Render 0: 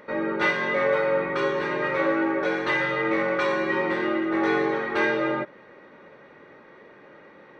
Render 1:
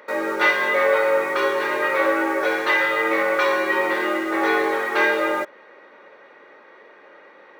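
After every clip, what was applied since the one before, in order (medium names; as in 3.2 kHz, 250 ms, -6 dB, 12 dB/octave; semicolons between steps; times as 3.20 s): high-pass 450 Hz 12 dB/octave; in parallel at -11 dB: bit crusher 6-bit; on the sum: trim +3.5 dB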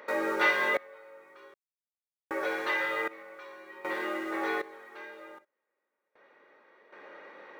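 in parallel at -1 dB: compression, threshold -28 dBFS, peak gain reduction 14 dB; on the sum: random-step tremolo 1.3 Hz, depth 100%; trim -7.5 dB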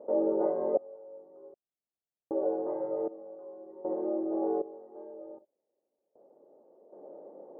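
elliptic low-pass 710 Hz, stop band 80 dB; bass shelf 97 Hz -7 dB; trim +5.5 dB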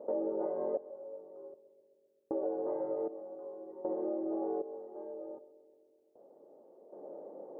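compression 4:1, threshold -33 dBFS, peak gain reduction 10 dB; filtered feedback delay 130 ms, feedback 79%, low-pass 960 Hz, level -15.5 dB; trim +1 dB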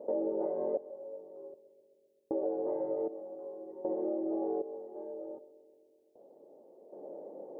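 peaking EQ 1.3 kHz -9.5 dB 0.7 oct; trim +2 dB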